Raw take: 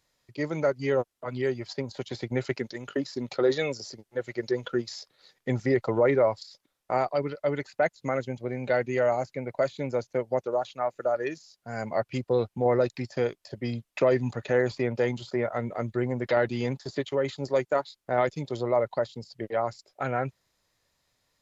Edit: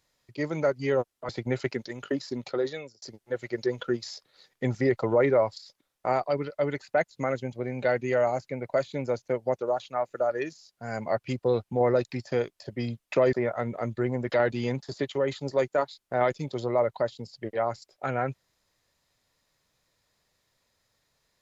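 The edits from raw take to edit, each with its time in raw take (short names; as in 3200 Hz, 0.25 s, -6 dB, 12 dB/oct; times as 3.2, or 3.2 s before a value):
1.29–2.14 cut
3.15–3.87 fade out
14.18–15.3 cut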